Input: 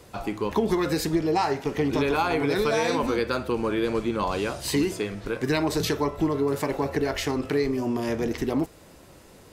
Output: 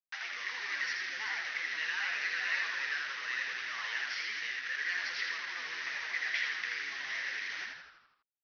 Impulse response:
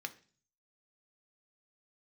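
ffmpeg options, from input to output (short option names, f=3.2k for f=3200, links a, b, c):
-filter_complex "[0:a]alimiter=limit=-21.5dB:level=0:latency=1:release=31,aresample=11025,acrusher=bits=5:mix=0:aa=0.000001,aresample=44100,asetrate=49833,aresample=44100,highpass=f=1.9k:t=q:w=7.2,asplit=8[a][b][c][d][e][f][g][h];[b]adelay=81,afreqshift=-100,volume=-3dB[i];[c]adelay=162,afreqshift=-200,volume=-8.4dB[j];[d]adelay=243,afreqshift=-300,volume=-13.7dB[k];[e]adelay=324,afreqshift=-400,volume=-19.1dB[l];[f]adelay=405,afreqshift=-500,volume=-24.4dB[m];[g]adelay=486,afreqshift=-600,volume=-29.8dB[n];[h]adelay=567,afreqshift=-700,volume=-35.1dB[o];[a][i][j][k][l][m][n][o]amix=inputs=8:normalize=0,volume=-9dB"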